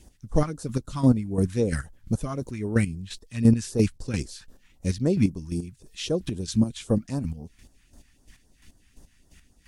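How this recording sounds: a quantiser's noise floor 12-bit, dither none; phasing stages 2, 3.8 Hz, lowest notch 460–2300 Hz; chopped level 2.9 Hz, depth 65%, duty 25%; Vorbis

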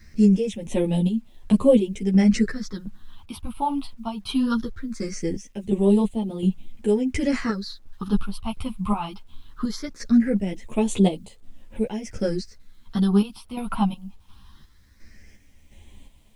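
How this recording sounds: phasing stages 6, 0.2 Hz, lowest notch 460–1500 Hz; chopped level 1.4 Hz, depth 60%, duty 50%; a quantiser's noise floor 12-bit, dither none; a shimmering, thickened sound

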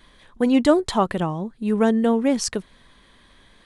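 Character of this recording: noise floor -55 dBFS; spectral tilt -5.5 dB/oct

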